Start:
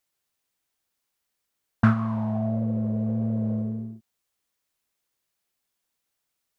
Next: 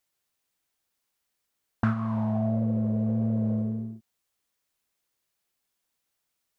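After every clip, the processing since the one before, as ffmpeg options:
-af "alimiter=limit=-14dB:level=0:latency=1:release=343"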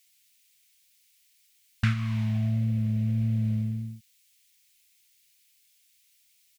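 -af "firequalizer=gain_entry='entry(170,0);entry(300,-21);entry(870,-18);entry(2200,12)':delay=0.05:min_phase=1,volume=3.5dB"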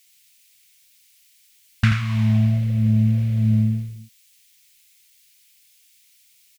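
-af "aecho=1:1:83:0.501,volume=7dB"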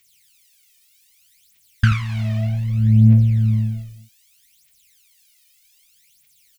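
-af "aphaser=in_gain=1:out_gain=1:delay=1.7:decay=0.75:speed=0.64:type=triangular,volume=-4dB"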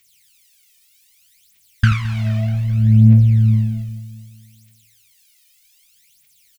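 -af "aecho=1:1:215|430|645|860|1075:0.126|0.0705|0.0395|0.0221|0.0124,volume=1.5dB"

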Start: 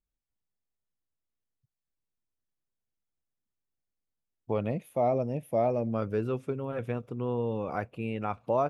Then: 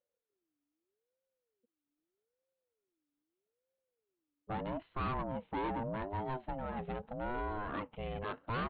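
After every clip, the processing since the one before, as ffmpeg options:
-af "equalizer=f=960:t=o:w=0.32:g=9,aresample=8000,asoftclip=type=tanh:threshold=-29dB,aresample=44100,aeval=exprs='val(0)*sin(2*PI*410*n/s+410*0.3/0.8*sin(2*PI*0.8*n/s))':c=same,volume=-1dB"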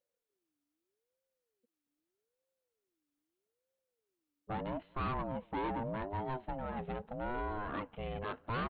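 -filter_complex "[0:a]asplit=2[a][b];[b]adelay=227.4,volume=-27dB,highshelf=f=4k:g=-5.12[c];[a][c]amix=inputs=2:normalize=0"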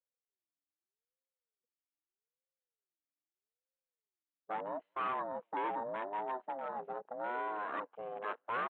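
-af "highpass=520,lowpass=2.8k,afwtdn=0.00398,volume=3dB"

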